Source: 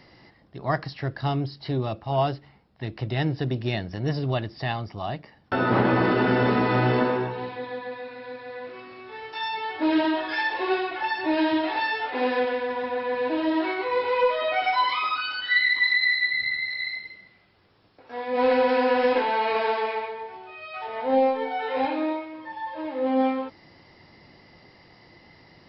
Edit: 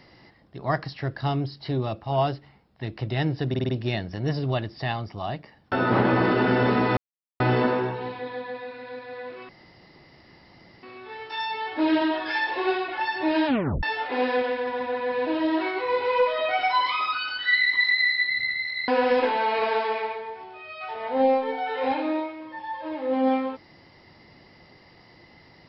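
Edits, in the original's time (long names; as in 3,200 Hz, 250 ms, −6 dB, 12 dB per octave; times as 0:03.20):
0:03.49: stutter 0.05 s, 5 plays
0:06.77: splice in silence 0.43 s
0:08.86: splice in room tone 1.34 s
0:11.49: tape stop 0.37 s
0:16.91–0:18.81: remove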